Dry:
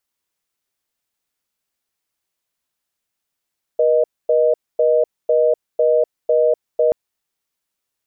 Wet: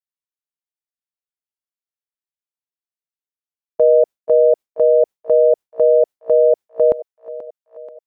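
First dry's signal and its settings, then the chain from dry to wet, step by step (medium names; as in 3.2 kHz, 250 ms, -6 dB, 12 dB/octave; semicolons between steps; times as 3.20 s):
call progress tone reorder tone, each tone -14.5 dBFS 3.13 s
gate with hold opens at -11 dBFS; dynamic bell 520 Hz, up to +4 dB, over -24 dBFS, Q 0.71; thinning echo 483 ms, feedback 70%, high-pass 430 Hz, level -13.5 dB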